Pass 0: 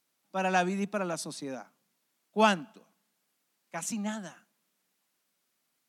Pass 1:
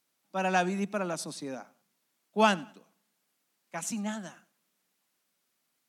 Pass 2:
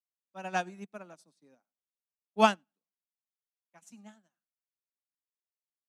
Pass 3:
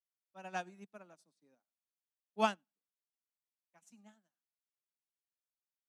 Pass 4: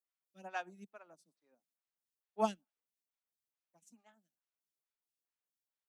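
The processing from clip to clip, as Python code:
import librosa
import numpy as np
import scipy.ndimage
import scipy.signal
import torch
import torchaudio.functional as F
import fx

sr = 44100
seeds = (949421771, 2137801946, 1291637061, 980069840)

y1 = fx.echo_feedback(x, sr, ms=96, feedback_pct=31, wet_db=-23.0)
y2 = fx.upward_expand(y1, sr, threshold_db=-45.0, expansion=2.5)
y2 = y2 * 10.0 ** (2.5 / 20.0)
y3 = fx.low_shelf(y2, sr, hz=69.0, db=-7.0)
y3 = y3 * 10.0 ** (-8.5 / 20.0)
y4 = fx.stagger_phaser(y3, sr, hz=2.3)
y4 = y4 * 10.0 ** (1.0 / 20.0)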